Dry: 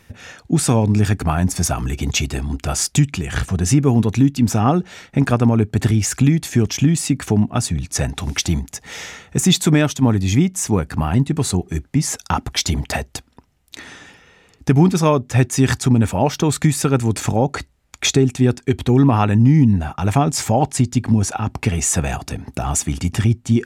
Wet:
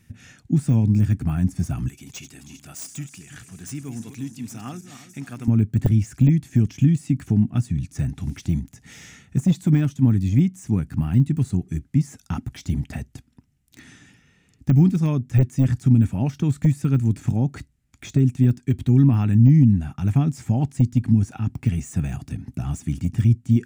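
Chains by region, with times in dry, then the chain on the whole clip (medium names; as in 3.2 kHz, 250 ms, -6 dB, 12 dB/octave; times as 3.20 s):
1.88–5.48 s: backward echo that repeats 163 ms, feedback 57%, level -11 dB + high-pass 1.2 kHz 6 dB/octave + treble shelf 4.4 kHz +10.5 dB
whole clip: graphic EQ 125/250/500/1000/4000/8000 Hz +8/+6/-10/-8/-4/+3 dB; de-esser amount 80%; trim -8 dB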